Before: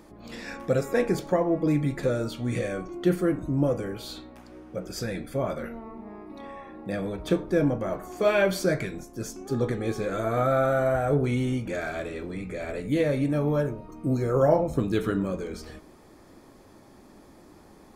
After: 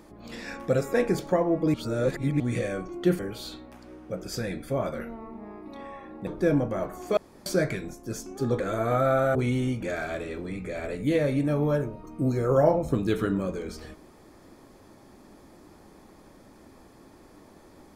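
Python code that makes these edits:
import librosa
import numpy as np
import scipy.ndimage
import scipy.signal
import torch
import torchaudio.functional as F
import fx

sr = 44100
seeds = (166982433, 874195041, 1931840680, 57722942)

y = fx.edit(x, sr, fx.reverse_span(start_s=1.74, length_s=0.66),
    fx.cut(start_s=3.19, length_s=0.64),
    fx.cut(start_s=6.91, length_s=0.46),
    fx.room_tone_fill(start_s=8.27, length_s=0.29),
    fx.cut(start_s=9.7, length_s=0.36),
    fx.cut(start_s=10.81, length_s=0.39), tone=tone)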